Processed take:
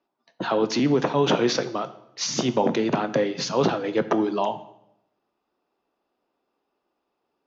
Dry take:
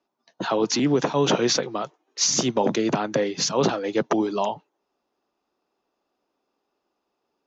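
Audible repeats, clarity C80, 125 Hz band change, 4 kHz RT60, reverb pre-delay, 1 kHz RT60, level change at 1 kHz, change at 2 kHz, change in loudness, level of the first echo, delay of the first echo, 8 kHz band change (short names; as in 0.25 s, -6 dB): none, 17.0 dB, 0.0 dB, 0.65 s, 10 ms, 0.75 s, +0.5 dB, 0.0 dB, -0.5 dB, none, none, n/a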